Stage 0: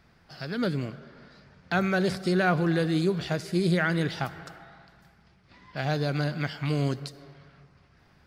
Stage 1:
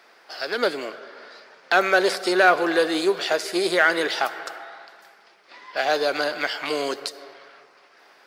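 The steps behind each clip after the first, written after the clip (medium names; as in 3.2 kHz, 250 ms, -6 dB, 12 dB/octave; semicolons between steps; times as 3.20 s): in parallel at -6 dB: one-sided clip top -31.5 dBFS; on the sum: high-pass 400 Hz 24 dB/octave; trim +7.5 dB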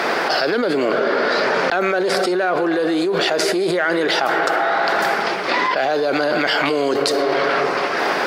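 tilt EQ -2.5 dB/octave; level flattener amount 100%; trim -5.5 dB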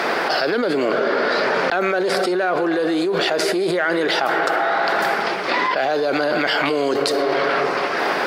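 dynamic bell 6.4 kHz, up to -3 dB, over -36 dBFS, Q 1.8; trim -1 dB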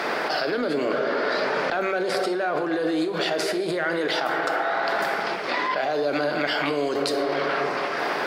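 simulated room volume 230 m³, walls mixed, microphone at 0.41 m; trim -6 dB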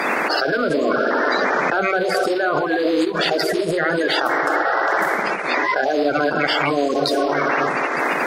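coarse spectral quantiser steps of 30 dB; transient shaper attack -1 dB, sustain -6 dB; trim +6.5 dB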